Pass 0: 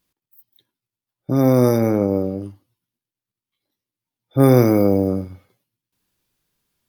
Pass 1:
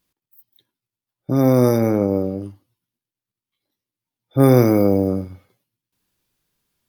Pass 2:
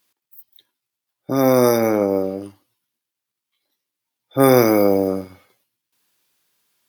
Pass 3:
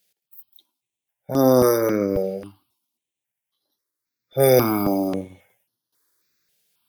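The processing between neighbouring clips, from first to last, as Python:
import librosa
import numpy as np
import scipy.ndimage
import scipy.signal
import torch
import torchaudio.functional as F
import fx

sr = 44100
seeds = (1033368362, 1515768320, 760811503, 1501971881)

y1 = x
y2 = fx.highpass(y1, sr, hz=700.0, slope=6)
y2 = F.gain(torch.from_numpy(y2), 7.0).numpy()
y3 = fx.phaser_held(y2, sr, hz=3.7, low_hz=290.0, high_hz=7800.0)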